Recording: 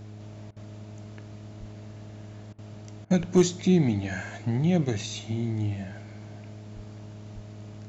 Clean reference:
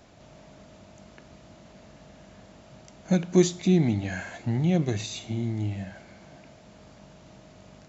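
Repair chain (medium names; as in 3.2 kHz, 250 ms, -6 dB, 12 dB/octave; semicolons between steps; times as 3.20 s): clip repair -10.5 dBFS; de-hum 105.6 Hz, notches 4; de-plosive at 1.59/3.19/6.75/7.34 s; interpolate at 0.51/2.53/3.05 s, 53 ms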